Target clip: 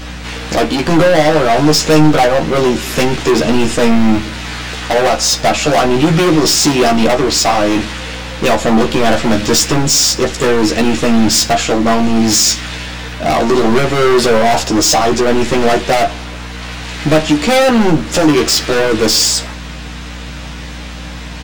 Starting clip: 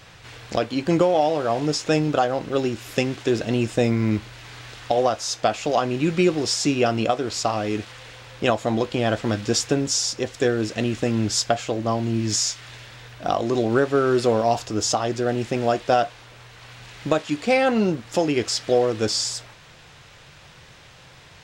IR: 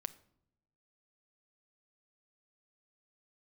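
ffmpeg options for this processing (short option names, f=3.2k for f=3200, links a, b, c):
-filter_complex "[0:a]highpass=110,aeval=exprs='val(0)+0.00794*(sin(2*PI*60*n/s)+sin(2*PI*2*60*n/s)/2+sin(2*PI*3*60*n/s)/3+sin(2*PI*4*60*n/s)/4+sin(2*PI*5*60*n/s)/5)':c=same,volume=25.5dB,asoftclip=hard,volume=-25.5dB,asplit=2[a][b];[b]adelay=13,volume=-4dB[c];[a][c]amix=inputs=2:normalize=0,asplit=2[d][e];[1:a]atrim=start_sample=2205[f];[e][f]afir=irnorm=-1:irlink=0,volume=13dB[g];[d][g]amix=inputs=2:normalize=0,volume=2.5dB"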